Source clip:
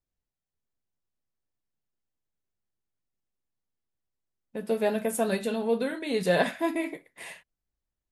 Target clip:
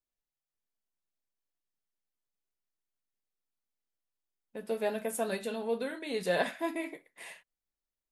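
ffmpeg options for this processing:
-af "equalizer=f=75:w=0.51:g=-11.5,volume=0.596"

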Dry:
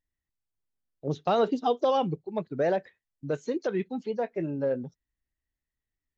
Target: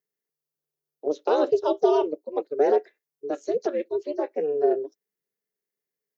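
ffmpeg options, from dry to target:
-af "aeval=exprs='val(0)*sin(2*PI*150*n/s)':c=same,highpass=f=420:t=q:w=5,aexciter=amount=1.3:drive=8.1:freq=4700"

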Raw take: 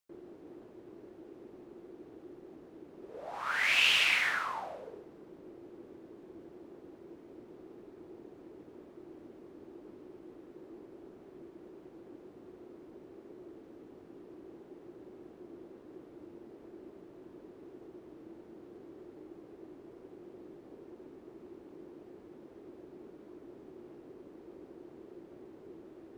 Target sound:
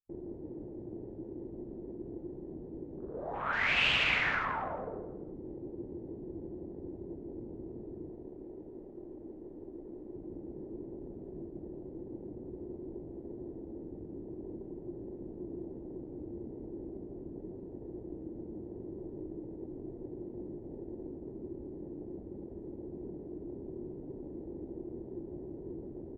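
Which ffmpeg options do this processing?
-filter_complex "[0:a]aemphasis=mode=reproduction:type=riaa,afwtdn=0.00251,asettb=1/sr,asplit=3[s0][s1][s2];[s0]atrim=end=8.104[s3];[s1]atrim=start=8.1:end=10.15,asetpts=PTS-STARTPTS,afade=t=in:d=0.004:c=qsin,afade=t=out:st=2.046:d=0.004:c=qsin,equalizer=f=93:w=0.42:g=-9.5[s4];[s2]atrim=start=10.146[s5];[s3][s4]acrossfade=d=0.004:c1=hsin:c2=qsin[s6];[s6][s5]acrossfade=d=0.004:c1=qsin:c2=hsin,asplit=2[s7][s8];[s8]adelay=166,lowpass=f=1500:p=1,volume=0.531,asplit=2[s9][s10];[s10]adelay=166,lowpass=f=1500:p=1,volume=0.39,asplit=2[s11][s12];[s12]adelay=166,lowpass=f=1500:p=1,volume=0.39,asplit=2[s13][s14];[s14]adelay=166,lowpass=f=1500:p=1,volume=0.39,asplit=2[s15][s16];[s16]adelay=166,lowpass=f=1500:p=1,volume=0.39[s17];[s7][s9][s11][s13][s15][s17]amix=inputs=6:normalize=0,volume=1.19"

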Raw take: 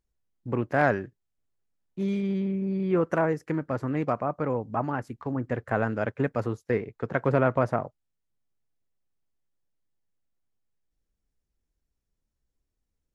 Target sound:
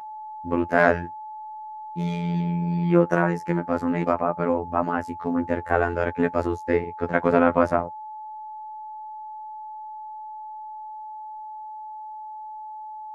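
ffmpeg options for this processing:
-af "aeval=exprs='val(0)+0.00794*sin(2*PI*870*n/s)':c=same,afftfilt=real='hypot(re,im)*cos(PI*b)':imag='0':win_size=2048:overlap=0.75,volume=2.66"

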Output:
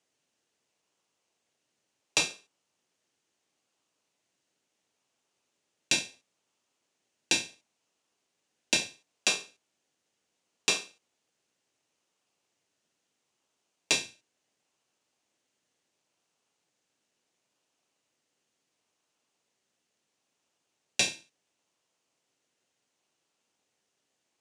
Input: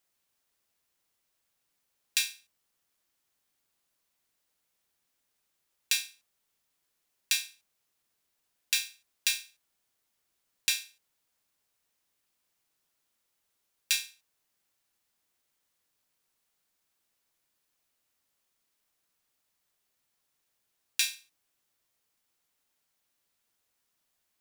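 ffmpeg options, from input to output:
-filter_complex "[0:a]asplit=2[s0][s1];[s1]acrusher=samples=28:mix=1:aa=0.000001:lfo=1:lforange=16.8:lforate=0.72,volume=0.447[s2];[s0][s2]amix=inputs=2:normalize=0,highpass=160,equalizer=f=200:t=q:w=4:g=-3,equalizer=f=2800:t=q:w=4:g=4,equalizer=f=6400:t=q:w=4:g=4,lowpass=f=8700:w=0.5412,lowpass=f=8700:w=1.3066"

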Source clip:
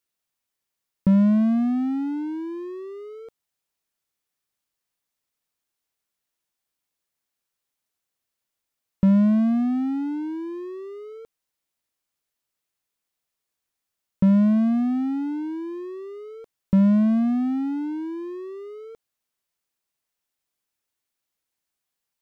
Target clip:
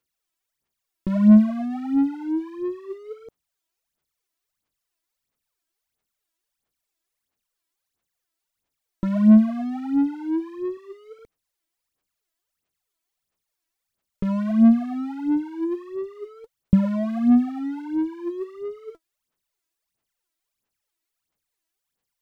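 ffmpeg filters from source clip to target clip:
-filter_complex "[0:a]asettb=1/sr,asplit=3[s0][s1][s2];[s0]atrim=end=10.774[s3];[s1]atrim=start=10.77:end=11.19,asetpts=PTS-STARTPTS,afade=t=in:d=0.004:c=qsin,afade=t=out:st=0.416:d=0.004:c=qsin,equalizer=f=550:t=o:w=1.8:g=-7.5[s4];[s2]atrim=start=11.186[s5];[s3][s4]acrossfade=d=0.004:c1=hsin:c2=qsin[s6];[s6][s5]acrossfade=d=0.004:c1=qsin:c2=hsin,aphaser=in_gain=1:out_gain=1:delay=3.1:decay=0.74:speed=1.5:type=sinusoidal,volume=0.708"

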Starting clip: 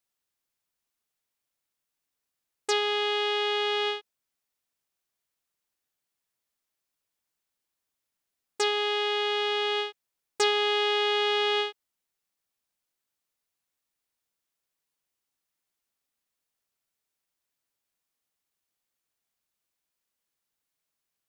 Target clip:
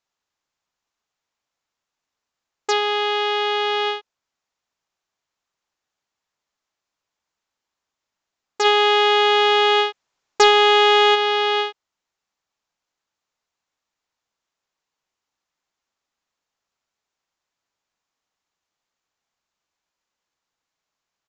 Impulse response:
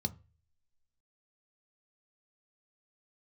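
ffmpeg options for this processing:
-filter_complex "[0:a]equalizer=f=960:w=0.98:g=6,asplit=3[s0][s1][s2];[s0]afade=t=out:st=8.64:d=0.02[s3];[s1]acontrast=48,afade=t=in:st=8.64:d=0.02,afade=t=out:st=11.14:d=0.02[s4];[s2]afade=t=in:st=11.14:d=0.02[s5];[s3][s4][s5]amix=inputs=3:normalize=0,aresample=16000,aresample=44100,volume=1.5"

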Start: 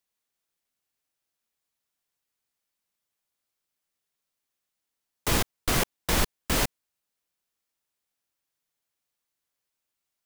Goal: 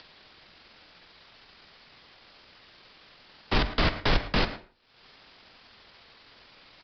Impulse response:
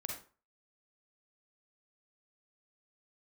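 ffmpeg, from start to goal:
-filter_complex "[0:a]acompressor=mode=upward:threshold=0.0501:ratio=2.5,afreqshift=-56,asoftclip=type=hard:threshold=0.112,atempo=1.5,asplit=2[s0][s1];[s1]adelay=110,highpass=300,lowpass=3400,asoftclip=type=hard:threshold=0.0376,volume=0.224[s2];[s0][s2]amix=inputs=2:normalize=0,asplit=2[s3][s4];[1:a]atrim=start_sample=2205,adelay=46[s5];[s4][s5]afir=irnorm=-1:irlink=0,volume=0.251[s6];[s3][s6]amix=inputs=2:normalize=0,aresample=11025,aresample=44100,volume=1.5"

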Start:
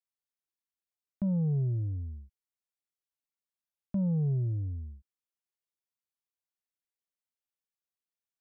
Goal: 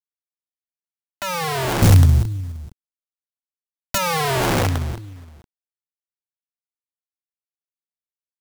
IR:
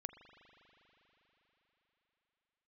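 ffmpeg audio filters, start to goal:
-filter_complex "[0:a]equalizer=f=310:t=o:w=0.74:g=9.5,asplit=2[s0][s1];[1:a]atrim=start_sample=2205[s2];[s1][s2]afir=irnorm=-1:irlink=0,volume=0.376[s3];[s0][s3]amix=inputs=2:normalize=0,acrusher=bits=6:mix=0:aa=0.000001,aecho=1:1:464:0.119,aeval=exprs='(mod(23.7*val(0)+1,2)-1)/23.7':c=same,asettb=1/sr,asplit=3[s4][s5][s6];[s4]atrim=end=1.824[s7];[s5]atrim=start=1.82:end=3.98,asetpts=PTS-STARTPTS,afade=t=in:d=0.004:c=qsin,afade=t=out:st=2.156:d=0.004:c=qsin,bass=f=250:g=14,treble=f=4000:g=9[s8];[s6]atrim=start=3.976[s9];[s7][s8]acrossfade=d=0.004:c1=hsin:c2=qsin[s10];[s10][s9]acrossfade=d=0.004:c1=qsin:c2=hsin,dynaudnorm=f=120:g=17:m=4.22"

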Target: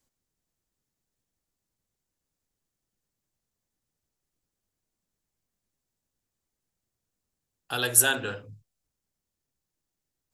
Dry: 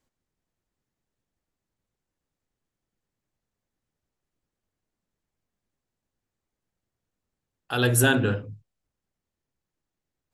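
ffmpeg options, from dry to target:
-filter_complex "[0:a]bass=f=250:g=1,treble=f=4000:g=9,acrossover=split=460[s0][s1];[s0]acompressor=threshold=0.0158:ratio=6[s2];[s2][s1]amix=inputs=2:normalize=0,volume=0.708"

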